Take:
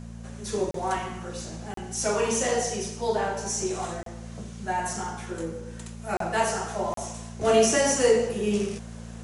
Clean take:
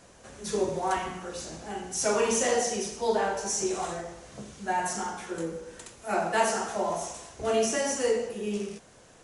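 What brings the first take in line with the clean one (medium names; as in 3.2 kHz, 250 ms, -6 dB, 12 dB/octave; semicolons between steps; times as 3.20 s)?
de-hum 57 Hz, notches 4; interpolate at 0.71/1.74/4.03/6.17/6.94 s, 33 ms; gain correction -6 dB, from 7.41 s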